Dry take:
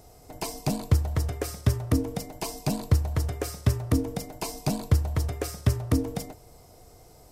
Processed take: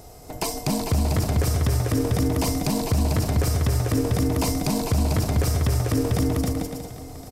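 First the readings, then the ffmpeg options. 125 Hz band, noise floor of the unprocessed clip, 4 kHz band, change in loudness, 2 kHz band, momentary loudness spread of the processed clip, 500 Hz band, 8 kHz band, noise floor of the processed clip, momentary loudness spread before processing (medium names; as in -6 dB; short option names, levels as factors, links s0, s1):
+4.5 dB, -53 dBFS, +7.0 dB, +5.0 dB, +6.0 dB, 7 LU, +6.5 dB, +7.0 dB, -39 dBFS, 9 LU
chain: -filter_complex "[0:a]asplit=2[s0][s1];[s1]aecho=0:1:270|445.5|559.6|633.7|681.9:0.631|0.398|0.251|0.158|0.1[s2];[s0][s2]amix=inputs=2:normalize=0,alimiter=limit=0.0891:level=0:latency=1:release=44,asplit=2[s3][s4];[s4]aecho=0:1:795:0.133[s5];[s3][s5]amix=inputs=2:normalize=0,volume=2.37"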